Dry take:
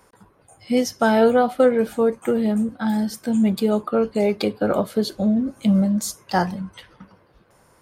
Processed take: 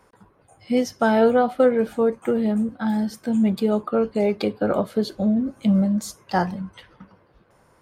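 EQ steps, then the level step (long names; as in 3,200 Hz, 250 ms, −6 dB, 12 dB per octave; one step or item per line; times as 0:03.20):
high-shelf EQ 4,800 Hz −8 dB
−1.0 dB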